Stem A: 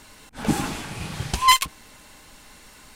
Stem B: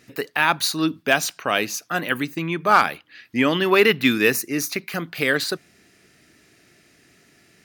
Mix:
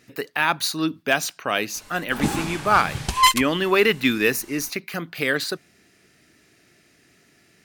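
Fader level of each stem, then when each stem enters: 0.0 dB, -2.0 dB; 1.75 s, 0.00 s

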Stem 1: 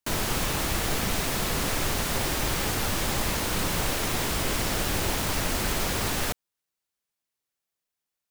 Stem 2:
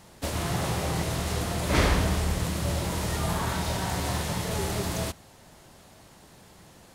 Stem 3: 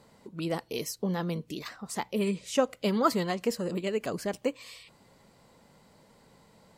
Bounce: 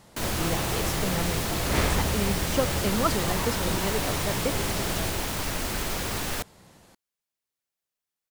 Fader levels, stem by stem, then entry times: -2.5 dB, -3.0 dB, -1.0 dB; 0.10 s, 0.00 s, 0.00 s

